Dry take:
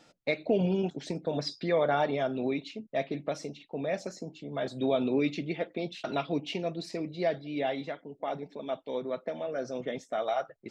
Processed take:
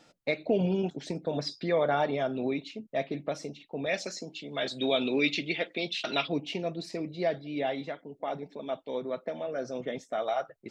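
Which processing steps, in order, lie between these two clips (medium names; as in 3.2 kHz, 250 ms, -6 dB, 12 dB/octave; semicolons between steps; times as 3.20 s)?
3.86–6.28 s: frequency weighting D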